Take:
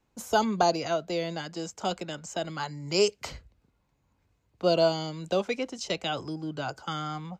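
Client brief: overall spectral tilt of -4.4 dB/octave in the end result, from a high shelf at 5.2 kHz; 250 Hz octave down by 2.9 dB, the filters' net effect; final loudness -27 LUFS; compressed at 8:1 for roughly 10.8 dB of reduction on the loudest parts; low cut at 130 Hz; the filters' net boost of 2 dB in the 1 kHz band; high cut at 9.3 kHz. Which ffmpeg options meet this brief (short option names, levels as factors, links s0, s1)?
-af "highpass=130,lowpass=9300,equalizer=f=250:t=o:g=-4,equalizer=f=1000:t=o:g=3.5,highshelf=f=5200:g=-5.5,acompressor=threshold=0.0355:ratio=8,volume=2.66"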